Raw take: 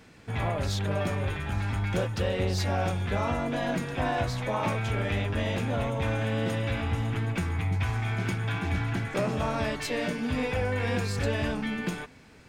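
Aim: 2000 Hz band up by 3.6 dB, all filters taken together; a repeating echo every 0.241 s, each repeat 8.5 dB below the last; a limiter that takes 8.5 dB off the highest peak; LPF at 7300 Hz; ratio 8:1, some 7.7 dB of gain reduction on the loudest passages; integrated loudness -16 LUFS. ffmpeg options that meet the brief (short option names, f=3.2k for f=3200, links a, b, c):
-af "lowpass=7.3k,equalizer=f=2k:t=o:g=4.5,acompressor=threshold=-31dB:ratio=8,alimiter=level_in=4.5dB:limit=-24dB:level=0:latency=1,volume=-4.5dB,aecho=1:1:241|482|723|964:0.376|0.143|0.0543|0.0206,volume=21dB"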